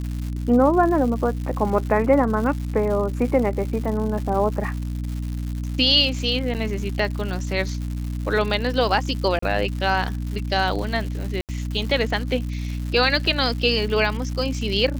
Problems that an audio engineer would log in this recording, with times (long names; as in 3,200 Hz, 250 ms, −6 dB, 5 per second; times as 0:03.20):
surface crackle 220 per second −30 dBFS
mains hum 60 Hz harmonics 5 −27 dBFS
0:06.54–0:06.55: drop-out 8.7 ms
0:09.39–0:09.42: drop-out 34 ms
0:11.41–0:11.49: drop-out 78 ms